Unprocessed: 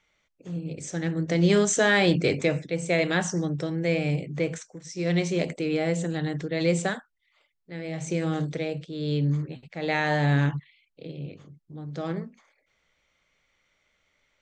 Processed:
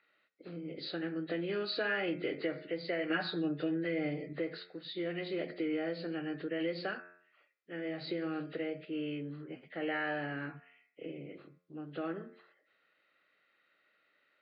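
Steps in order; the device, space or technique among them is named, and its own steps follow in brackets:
hum removal 88.94 Hz, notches 39
hearing aid with frequency lowering (hearing-aid frequency compression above 1,600 Hz 1.5 to 1; downward compressor 3 to 1, threshold −33 dBFS, peak gain reduction 12.5 dB; loudspeaker in its box 300–5,200 Hz, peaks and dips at 320 Hz +5 dB, 940 Hz −8 dB, 1,400 Hz +7 dB)
0:03.09–0:04.33: comb filter 6.6 ms, depth 71%
level −1.5 dB

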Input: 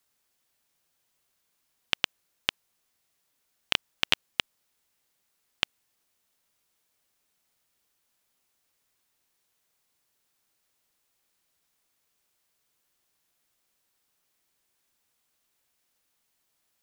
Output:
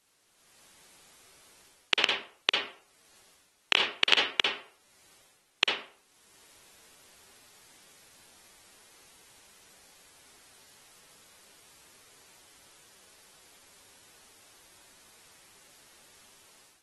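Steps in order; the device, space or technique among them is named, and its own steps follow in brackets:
filmed off a television (band-pass filter 260–7,000 Hz; parametric band 400 Hz +6 dB 0.44 octaves; convolution reverb RT60 0.50 s, pre-delay 46 ms, DRR 0 dB; white noise bed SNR 29 dB; automatic gain control gain up to 12.5 dB; level −1.5 dB; AAC 32 kbit/s 48,000 Hz)

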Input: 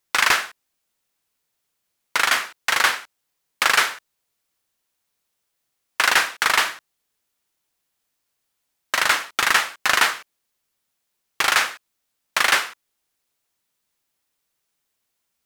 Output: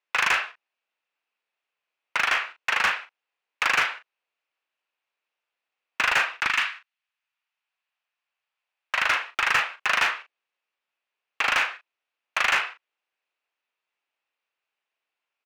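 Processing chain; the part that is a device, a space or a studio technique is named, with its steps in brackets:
0:06.46–0:08.99: high-pass filter 1,500 Hz → 460 Hz 12 dB per octave
megaphone (band-pass filter 520–2,600 Hz; parametric band 2,600 Hz +8 dB 0.34 octaves; hard clipping −13 dBFS, distortion −12 dB; double-tracking delay 38 ms −9 dB)
level −3 dB

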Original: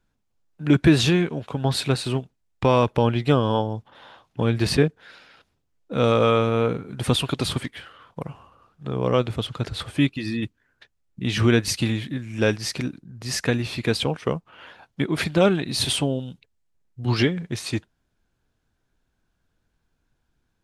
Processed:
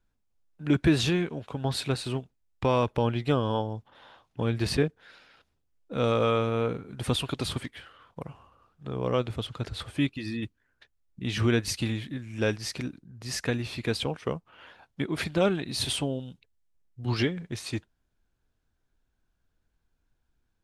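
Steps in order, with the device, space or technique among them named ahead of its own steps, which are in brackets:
low shelf boost with a cut just above (low-shelf EQ 77 Hz +6 dB; parametric band 150 Hz −2.5 dB 1 octave)
level −6 dB

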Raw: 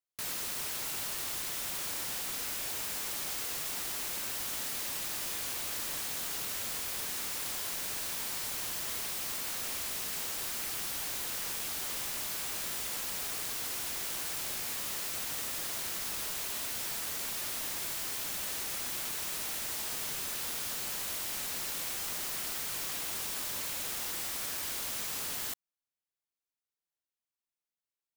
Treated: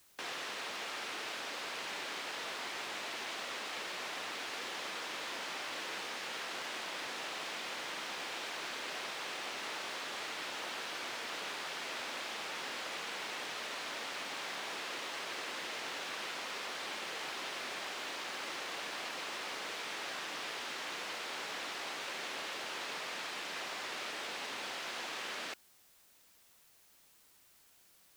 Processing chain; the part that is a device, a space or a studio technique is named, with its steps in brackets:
split-band scrambled radio (band-splitting scrambler in four parts; band-pass filter 320–3,300 Hz; white noise bed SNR 23 dB)
level +3.5 dB

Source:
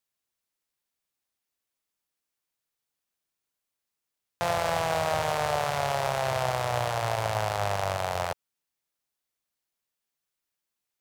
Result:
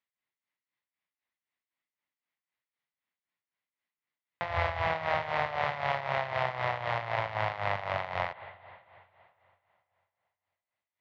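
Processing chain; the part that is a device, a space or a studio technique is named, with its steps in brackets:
0:04.45–0:04.87: low shelf with overshoot 110 Hz +12 dB, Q 3
combo amplifier with spring reverb and tremolo (spring reverb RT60 2.9 s, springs 43/55/59 ms, chirp 20 ms, DRR 11.5 dB; amplitude tremolo 3.9 Hz, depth 71%; loudspeaker in its box 91–3,800 Hz, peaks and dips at 430 Hz −5 dB, 1,000 Hz +4 dB, 2,000 Hz +10 dB)
level −2 dB

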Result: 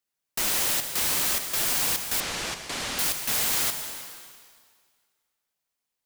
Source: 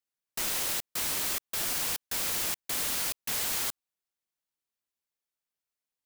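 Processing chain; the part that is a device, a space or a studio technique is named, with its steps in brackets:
saturated reverb return (on a send at −4 dB: convolution reverb RT60 1.9 s, pre-delay 53 ms + soft clipping −28 dBFS, distortion −15 dB)
0:02.20–0:02.99: on the sum: high-frequency loss of the air 79 metres
level +5 dB

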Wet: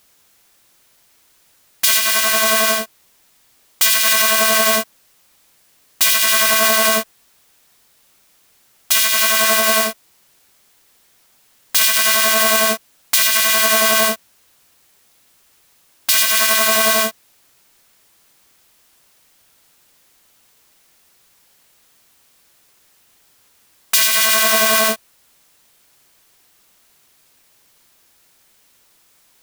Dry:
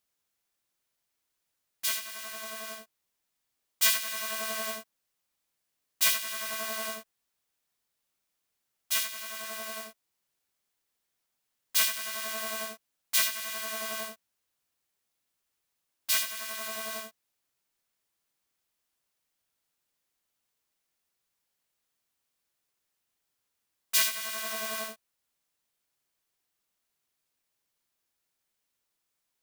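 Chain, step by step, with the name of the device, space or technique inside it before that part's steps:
loud club master (downward compressor 2.5 to 1, threshold −31 dBFS, peak gain reduction 8.5 dB; hard clipping −18 dBFS, distortion −33 dB; boost into a limiter +26.5 dB)
level −1 dB

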